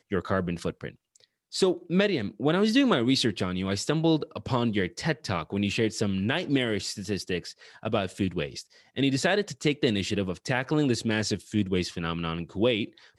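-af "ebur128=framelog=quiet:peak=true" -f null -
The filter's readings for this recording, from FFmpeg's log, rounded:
Integrated loudness:
  I:         -27.3 LUFS
  Threshold: -37.6 LUFS
Loudness range:
  LRA:         3.7 LU
  Threshold: -47.4 LUFS
  LRA low:   -29.1 LUFS
  LRA high:  -25.4 LUFS
True peak:
  Peak:      -11.3 dBFS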